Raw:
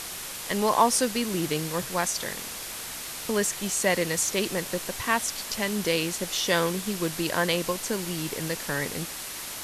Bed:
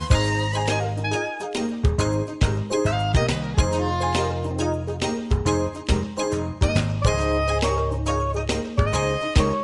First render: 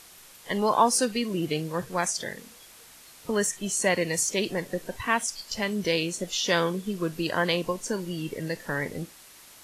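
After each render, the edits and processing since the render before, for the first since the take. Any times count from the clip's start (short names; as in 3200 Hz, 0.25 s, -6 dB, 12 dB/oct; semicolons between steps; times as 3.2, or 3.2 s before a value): noise print and reduce 14 dB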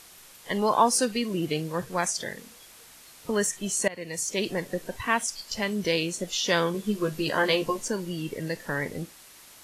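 3.88–4.47 fade in, from -21 dB; 6.73–7.88 doubler 14 ms -3 dB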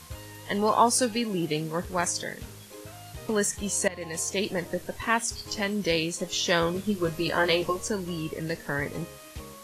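add bed -23 dB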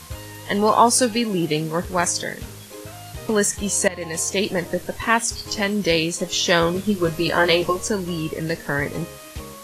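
gain +6.5 dB; limiter -3 dBFS, peak gain reduction 1 dB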